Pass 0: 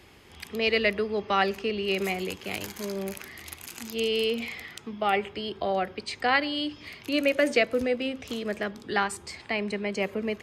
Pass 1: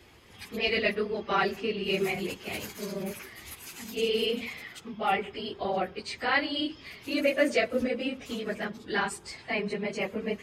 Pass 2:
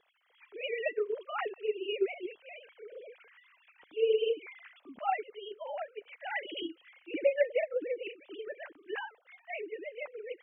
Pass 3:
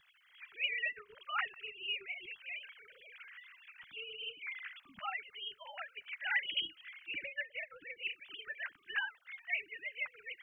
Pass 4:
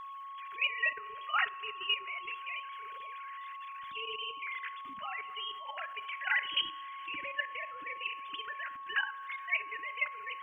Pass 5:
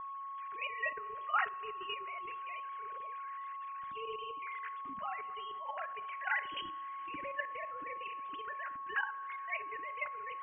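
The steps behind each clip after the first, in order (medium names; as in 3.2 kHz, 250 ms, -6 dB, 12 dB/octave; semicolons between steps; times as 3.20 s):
phase randomisation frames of 50 ms; trim -2 dB
formants replaced by sine waves; trim -5 dB
compression 4:1, threshold -34 dBFS, peak gain reduction 11.5 dB; FFT filter 120 Hz 0 dB, 190 Hz -6 dB, 330 Hz -29 dB, 490 Hz -29 dB, 1.5 kHz -1 dB; trim +8 dB
two-slope reverb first 0.45 s, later 4.5 s, from -18 dB, DRR 10.5 dB; level held to a coarse grid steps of 12 dB; whistle 1.1 kHz -50 dBFS; trim +8 dB
low-pass 1.2 kHz 12 dB/octave; trim +3.5 dB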